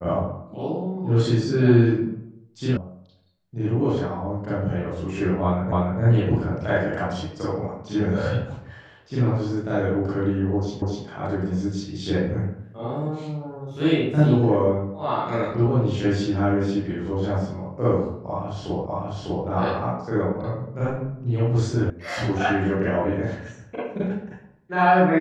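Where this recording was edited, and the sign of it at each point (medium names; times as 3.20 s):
2.77 s: sound stops dead
5.72 s: repeat of the last 0.29 s
10.82 s: repeat of the last 0.25 s
18.86 s: repeat of the last 0.6 s
21.90 s: sound stops dead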